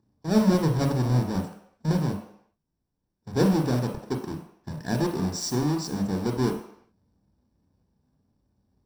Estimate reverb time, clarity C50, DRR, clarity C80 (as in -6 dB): no single decay rate, 6.5 dB, 2.5 dB, 9.5 dB